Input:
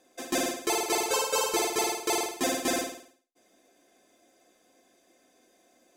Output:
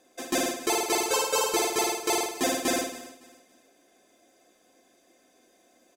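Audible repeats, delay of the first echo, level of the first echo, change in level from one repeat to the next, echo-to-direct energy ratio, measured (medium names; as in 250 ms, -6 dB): 2, 280 ms, -17.5 dB, -10.0 dB, -17.0 dB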